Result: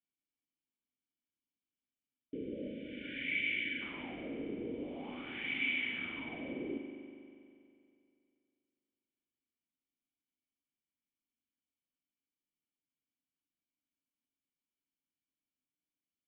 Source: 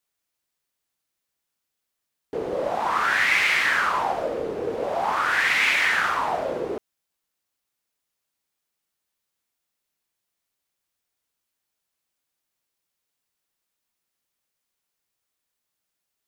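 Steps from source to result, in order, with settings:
formant resonators in series i
spring reverb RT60 2.5 s, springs 40 ms, chirp 35 ms, DRR 5 dB
time-frequency box erased 0:00.98–0:03.81, 640–1,400 Hz

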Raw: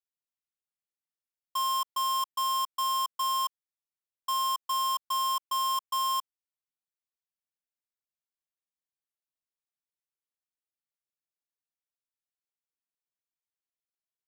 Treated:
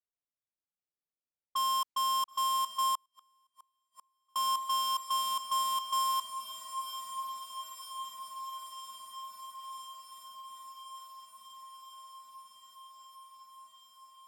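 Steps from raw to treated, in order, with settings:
low-pass that shuts in the quiet parts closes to 890 Hz, open at −30.5 dBFS
feedback delay with all-pass diffusion 984 ms, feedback 76%, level −9.5 dB
0:02.95–0:04.36: gate with flip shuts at −33 dBFS, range −41 dB
level −1.5 dB

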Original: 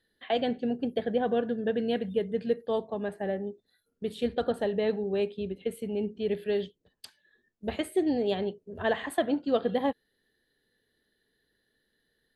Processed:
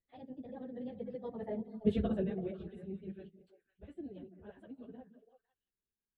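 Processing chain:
source passing by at 0:03.68, 27 m/s, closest 5.7 metres
RIAA equalisation playback
time stretch by phase vocoder 0.5×
on a send: echo through a band-pass that steps 167 ms, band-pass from 220 Hz, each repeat 1.4 octaves, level −6.5 dB
on the sum: level +3.5 dB

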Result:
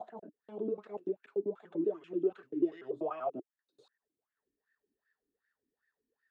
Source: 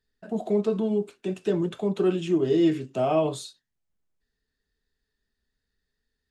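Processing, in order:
slices reordered back to front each 97 ms, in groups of 5
LFO wah 2.6 Hz 290–1,800 Hz, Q 6.7
multiband upward and downward compressor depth 40%

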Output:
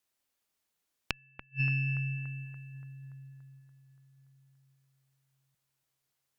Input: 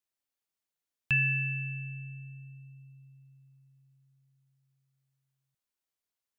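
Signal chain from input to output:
gate with flip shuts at −25 dBFS, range −42 dB
harmonic generator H 2 −9 dB, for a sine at −20 dBFS
bucket-brigade delay 287 ms, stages 4,096, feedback 64%, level −12 dB
level +7.5 dB

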